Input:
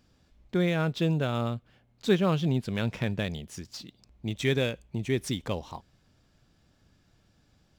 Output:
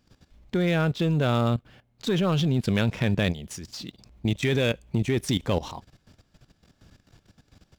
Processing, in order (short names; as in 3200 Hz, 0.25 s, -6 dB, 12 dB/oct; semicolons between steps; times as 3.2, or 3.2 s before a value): in parallel at -4 dB: overloaded stage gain 24.5 dB; on the sum: level quantiser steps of 15 dB; gain +7.5 dB